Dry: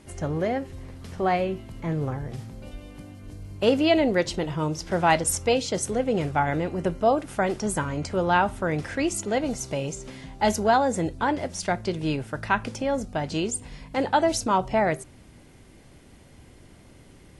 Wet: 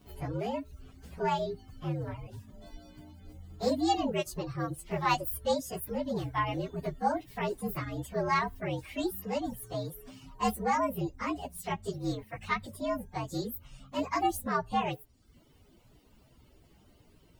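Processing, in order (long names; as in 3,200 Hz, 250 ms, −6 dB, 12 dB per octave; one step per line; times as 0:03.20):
partials spread apart or drawn together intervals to 117%
reverb reduction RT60 0.65 s
level −4.5 dB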